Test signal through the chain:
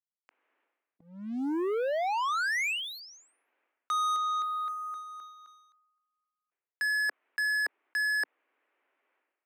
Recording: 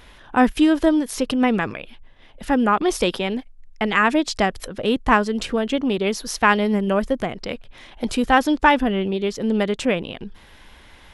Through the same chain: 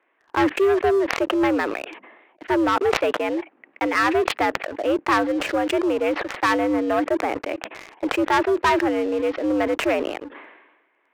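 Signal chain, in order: mistuned SSB +85 Hz 200–2400 Hz; waveshaping leveller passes 3; decay stretcher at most 52 dB/s; trim -10 dB

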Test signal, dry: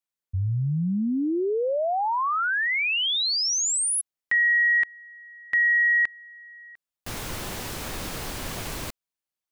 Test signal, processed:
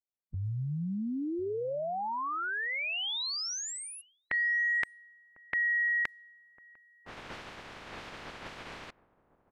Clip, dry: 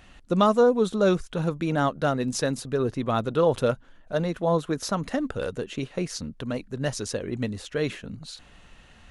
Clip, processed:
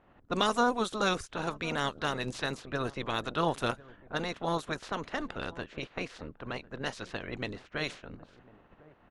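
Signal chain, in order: spectral peaks clipped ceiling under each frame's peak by 20 dB; echo from a far wall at 180 m, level -20 dB; level-controlled noise filter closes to 980 Hz, open at -20 dBFS; trim -7.5 dB

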